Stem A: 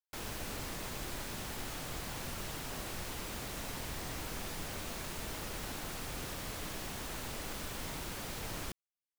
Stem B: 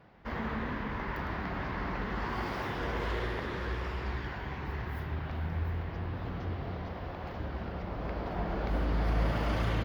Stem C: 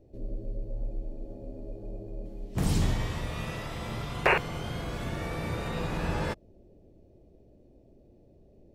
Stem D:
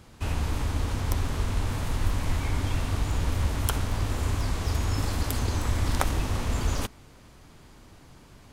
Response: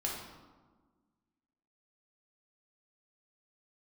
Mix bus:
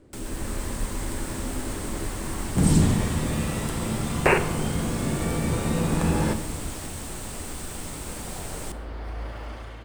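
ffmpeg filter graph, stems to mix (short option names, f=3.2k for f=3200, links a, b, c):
-filter_complex "[0:a]acrossover=split=380[a][b];[b]acompressor=threshold=-46dB:ratio=6[c];[a][c]amix=inputs=2:normalize=0,volume=1dB,asplit=2[d][e];[e]volume=-10dB[f];[1:a]equalizer=f=160:w=1.8:g=-11.5,volume=-11.5dB,asplit=2[g][h];[h]volume=-8dB[i];[2:a]equalizer=f=230:w=0.89:g=10.5,volume=-4.5dB,asplit=2[j][k];[k]volume=-8.5dB[l];[3:a]lowpass=f=3.7k:p=1,volume=-13.5dB[m];[4:a]atrim=start_sample=2205[n];[f][i][l]amix=inputs=3:normalize=0[o];[o][n]afir=irnorm=-1:irlink=0[p];[d][g][j][m][p]amix=inputs=5:normalize=0,dynaudnorm=f=100:g=9:m=3.5dB,equalizer=f=8.4k:w=2.8:g=13.5"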